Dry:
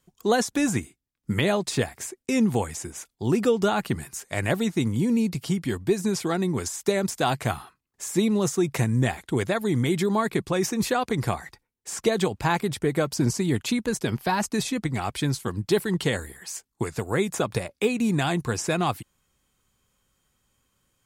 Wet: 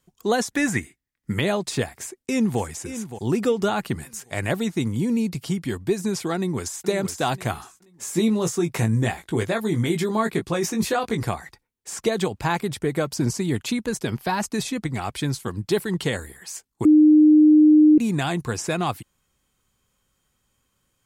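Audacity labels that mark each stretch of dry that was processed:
0.510000	1.320000	parametric band 1,900 Hz +12 dB 0.42 octaves
1.870000	2.610000	delay throw 570 ms, feedback 30%, level −11.5 dB
6.360000	6.870000	delay throw 480 ms, feedback 30%, level −9.5 dB
7.540000	11.230000	double-tracking delay 18 ms −6 dB
16.850000	17.980000	beep over 305 Hz −9.5 dBFS

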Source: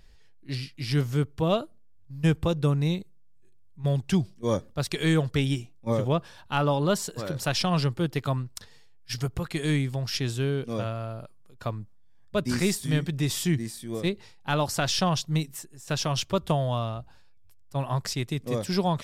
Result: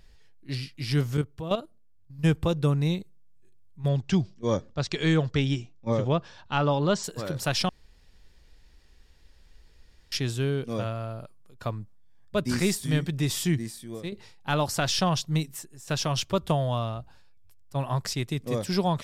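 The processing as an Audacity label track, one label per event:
1.170000	2.190000	output level in coarse steps of 11 dB
3.880000	7.040000	Butterworth low-pass 7,100 Hz
7.690000	10.120000	fill with room tone
13.390000	14.120000	fade out equal-power, to −10.5 dB

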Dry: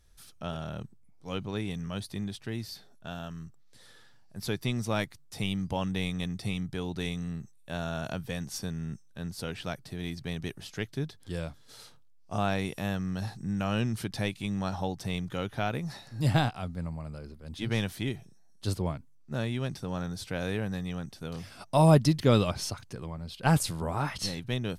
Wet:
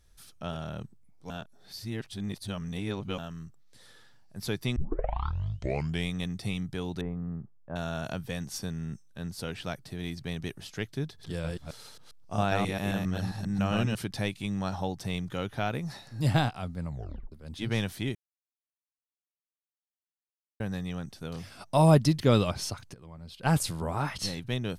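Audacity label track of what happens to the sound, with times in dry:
1.300000	3.180000	reverse
4.760000	4.760000	tape start 1.33 s
7.010000	7.760000	low-pass filter 1,300 Hz 24 dB per octave
11.040000	13.950000	delay that plays each chunk backwards 134 ms, level −2 dB
16.880000	16.880000	tape stop 0.44 s
18.150000	20.600000	silence
22.940000	23.640000	fade in, from −15 dB

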